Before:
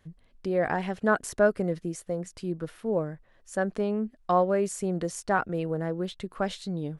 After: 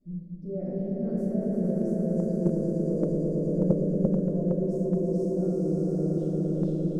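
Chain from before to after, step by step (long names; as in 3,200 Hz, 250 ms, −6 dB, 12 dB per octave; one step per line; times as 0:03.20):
running median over 3 samples
source passing by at 0:02.15, 21 m/s, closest 15 metres
drawn EQ curve 100 Hz 0 dB, 200 Hz +13 dB, 590 Hz +4 dB, 890 Hz −29 dB, 3,000 Hz −23 dB, 4,800 Hz −12 dB
reversed playback
downward compressor 6 to 1, threshold −41 dBFS, peak gain reduction 22 dB
reversed playback
mains-hum notches 50/100/150 Hz
on a send: echo that builds up and dies away 115 ms, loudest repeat 5, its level −4 dB
on the sum: rectangular room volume 380 cubic metres, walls mixed, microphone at 7.8 metres
noise gate −15 dBFS, range −12 dB
level +5.5 dB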